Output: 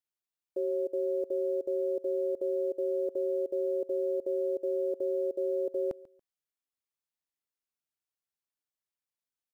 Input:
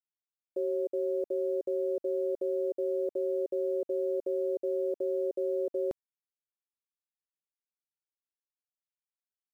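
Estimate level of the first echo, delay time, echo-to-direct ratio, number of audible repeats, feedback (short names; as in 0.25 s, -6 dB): -20.0 dB, 0.141 s, -20.0 dB, 2, 24%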